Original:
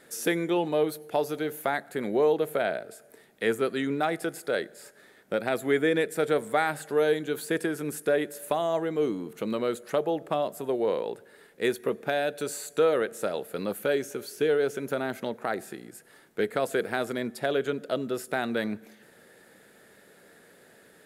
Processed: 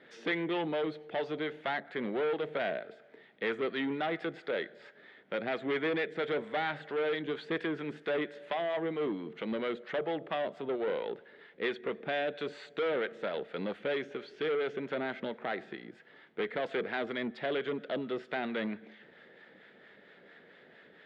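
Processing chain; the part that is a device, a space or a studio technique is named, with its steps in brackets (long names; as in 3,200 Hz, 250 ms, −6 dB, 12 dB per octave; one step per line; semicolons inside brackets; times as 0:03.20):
guitar amplifier with harmonic tremolo (two-band tremolo in antiphase 4.4 Hz, depth 50%, crossover 700 Hz; soft clipping −28 dBFS, distortion −10 dB; loudspeaker in its box 77–3,600 Hz, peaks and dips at 110 Hz −8 dB, 2,000 Hz +6 dB, 3,300 Hz +6 dB)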